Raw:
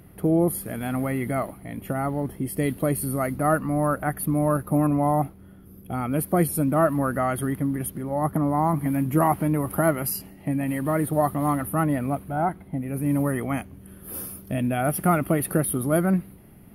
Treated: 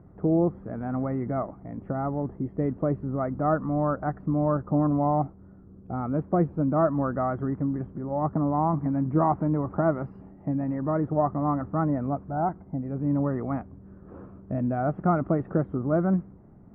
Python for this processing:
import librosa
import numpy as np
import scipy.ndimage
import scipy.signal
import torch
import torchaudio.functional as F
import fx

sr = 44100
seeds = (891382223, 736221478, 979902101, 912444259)

y = scipy.signal.sosfilt(scipy.signal.butter(4, 1300.0, 'lowpass', fs=sr, output='sos'), x)
y = F.gain(torch.from_numpy(y), -2.0).numpy()